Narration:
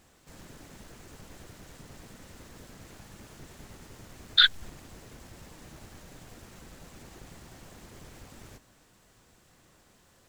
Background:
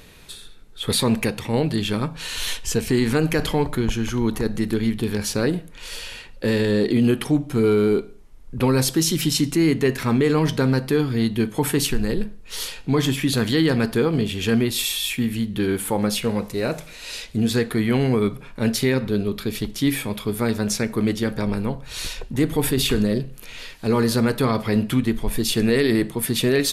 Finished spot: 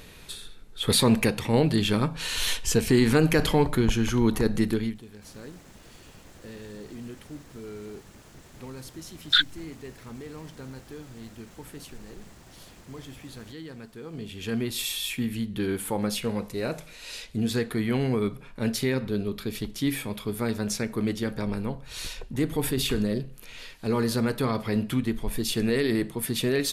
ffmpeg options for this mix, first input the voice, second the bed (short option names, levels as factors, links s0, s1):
-filter_complex "[0:a]adelay=4950,volume=0.891[s0];[1:a]volume=6.31,afade=t=out:st=4.62:d=0.4:silence=0.0794328,afade=t=in:st=14.01:d=0.89:silence=0.149624[s1];[s0][s1]amix=inputs=2:normalize=0"